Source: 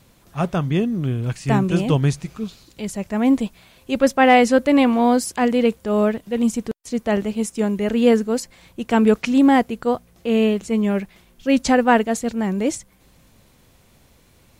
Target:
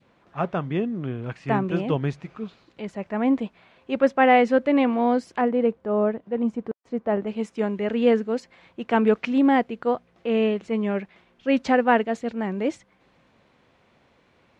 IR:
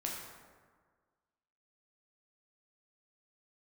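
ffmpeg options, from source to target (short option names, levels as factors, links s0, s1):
-af "asetnsamples=n=441:p=0,asendcmd='5.41 lowpass f 1200;7.27 lowpass f 2500',lowpass=2100,adynamicequalizer=threshold=0.0251:dfrequency=1100:dqfactor=0.81:tfrequency=1100:tqfactor=0.81:attack=5:release=100:ratio=0.375:range=2.5:mode=cutabove:tftype=bell,highpass=f=370:p=1"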